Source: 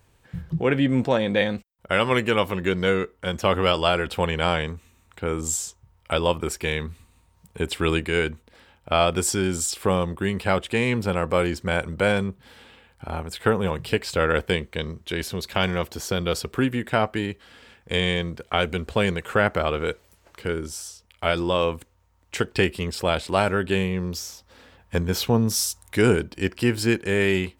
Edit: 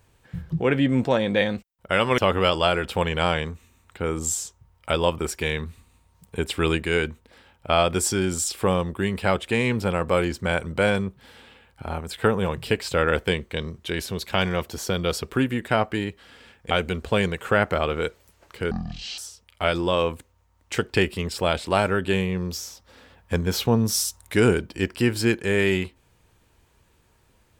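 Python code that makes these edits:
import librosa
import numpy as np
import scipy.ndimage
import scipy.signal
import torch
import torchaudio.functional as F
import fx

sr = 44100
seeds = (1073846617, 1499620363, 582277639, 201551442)

y = fx.edit(x, sr, fx.cut(start_s=2.18, length_s=1.22),
    fx.cut(start_s=17.93, length_s=0.62),
    fx.speed_span(start_s=20.55, length_s=0.25, speed=0.53), tone=tone)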